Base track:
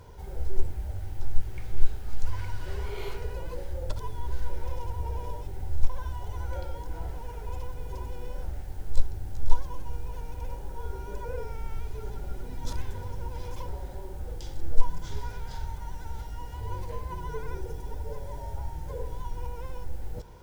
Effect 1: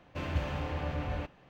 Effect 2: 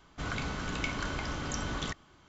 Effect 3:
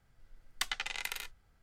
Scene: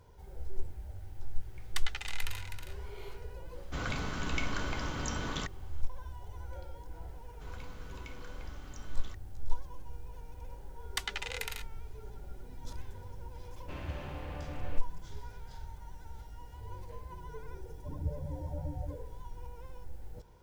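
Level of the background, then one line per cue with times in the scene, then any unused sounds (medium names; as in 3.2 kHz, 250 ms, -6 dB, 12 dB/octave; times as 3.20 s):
base track -10 dB
1.15 s: add 3 -3.5 dB + delay 319 ms -8 dB
3.54 s: add 2 -1.5 dB
7.22 s: add 2 -16.5 dB
10.36 s: add 3 -1 dB
13.53 s: add 1 -7.5 dB
17.70 s: add 1 -2.5 dB + loudest bins only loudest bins 8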